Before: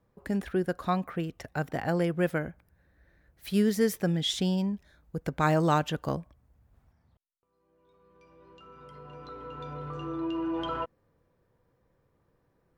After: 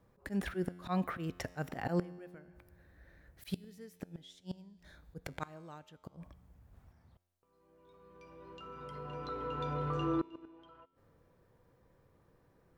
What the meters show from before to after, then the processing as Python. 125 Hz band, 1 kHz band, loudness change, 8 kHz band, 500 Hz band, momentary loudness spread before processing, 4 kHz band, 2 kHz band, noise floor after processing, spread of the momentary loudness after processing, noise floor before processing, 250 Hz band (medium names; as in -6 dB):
-9.5 dB, -9.5 dB, -9.5 dB, -14.5 dB, -11.0 dB, 16 LU, -16.0 dB, -10.0 dB, -70 dBFS, 20 LU, -72 dBFS, -10.0 dB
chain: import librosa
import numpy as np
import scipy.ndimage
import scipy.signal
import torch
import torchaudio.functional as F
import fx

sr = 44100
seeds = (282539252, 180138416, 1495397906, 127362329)

y = fx.auto_swell(x, sr, attack_ms=168.0)
y = fx.gate_flip(y, sr, shuts_db=-25.0, range_db=-29)
y = fx.comb_fb(y, sr, f0_hz=89.0, decay_s=1.7, harmonics='all', damping=0.0, mix_pct=50)
y = F.gain(torch.from_numpy(y), 8.5).numpy()